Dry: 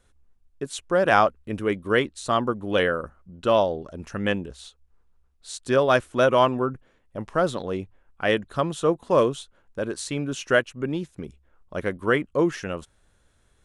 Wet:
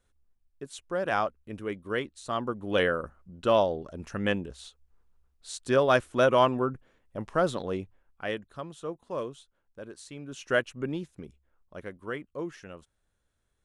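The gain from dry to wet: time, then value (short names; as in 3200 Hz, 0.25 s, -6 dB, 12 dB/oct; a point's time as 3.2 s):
2.25 s -9.5 dB
2.81 s -3 dB
7.73 s -3 dB
8.6 s -14.5 dB
10.19 s -14.5 dB
10.67 s -3 dB
11.97 s -14 dB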